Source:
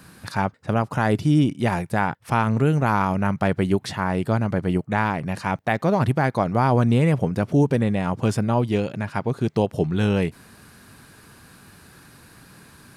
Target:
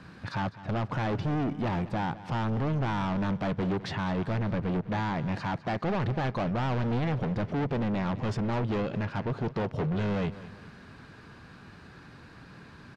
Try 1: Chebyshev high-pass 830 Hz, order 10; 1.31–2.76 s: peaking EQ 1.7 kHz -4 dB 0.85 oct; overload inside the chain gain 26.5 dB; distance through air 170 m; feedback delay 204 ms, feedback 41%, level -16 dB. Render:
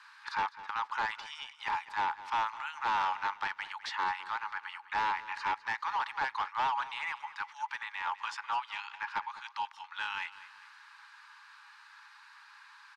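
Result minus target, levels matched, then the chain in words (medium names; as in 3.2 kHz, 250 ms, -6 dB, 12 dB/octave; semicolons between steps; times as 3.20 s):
1 kHz band +7.0 dB
1.31–2.76 s: peaking EQ 1.7 kHz -4 dB 0.85 oct; overload inside the chain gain 26.5 dB; distance through air 170 m; feedback delay 204 ms, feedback 41%, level -16 dB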